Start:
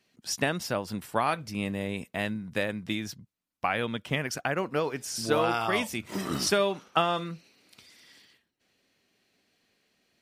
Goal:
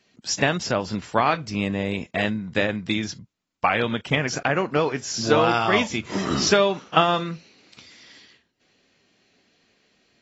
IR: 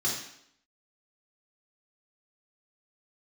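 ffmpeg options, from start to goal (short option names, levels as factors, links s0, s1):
-af "volume=2.11" -ar 22050 -c:a aac -b:a 24k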